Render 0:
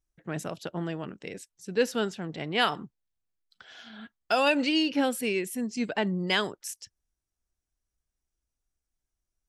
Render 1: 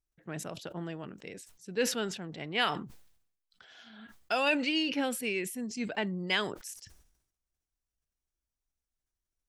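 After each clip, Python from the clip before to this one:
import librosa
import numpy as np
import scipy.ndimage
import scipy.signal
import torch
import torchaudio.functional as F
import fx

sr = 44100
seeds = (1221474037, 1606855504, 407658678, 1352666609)

y = fx.dynamic_eq(x, sr, hz=2300.0, q=1.5, threshold_db=-42.0, ratio=4.0, max_db=5)
y = fx.sustainer(y, sr, db_per_s=79.0)
y = F.gain(torch.from_numpy(y), -6.0).numpy()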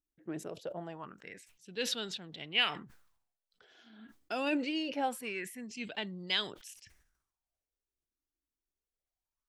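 y = fx.bell_lfo(x, sr, hz=0.24, low_hz=290.0, high_hz=3900.0, db=15)
y = F.gain(torch.from_numpy(y), -8.0).numpy()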